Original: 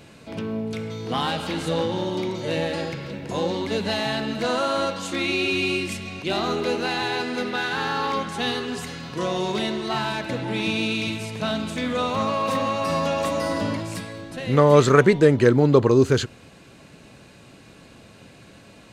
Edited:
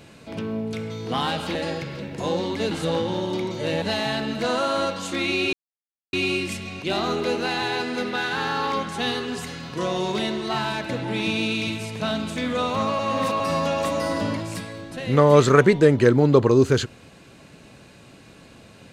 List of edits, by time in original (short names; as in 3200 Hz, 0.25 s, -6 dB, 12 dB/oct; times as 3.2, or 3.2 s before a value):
1.55–2.66 move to 3.82
5.53 insert silence 0.60 s
12.39–12.8 reverse